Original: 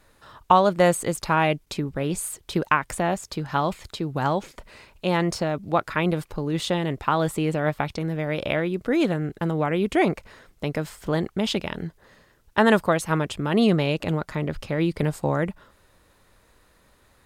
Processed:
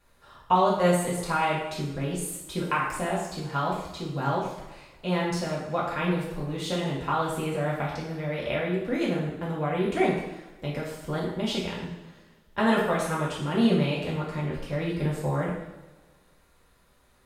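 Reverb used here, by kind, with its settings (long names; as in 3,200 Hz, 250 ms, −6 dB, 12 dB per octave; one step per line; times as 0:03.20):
coupled-rooms reverb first 0.76 s, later 2 s, from −18 dB, DRR −6 dB
level −10.5 dB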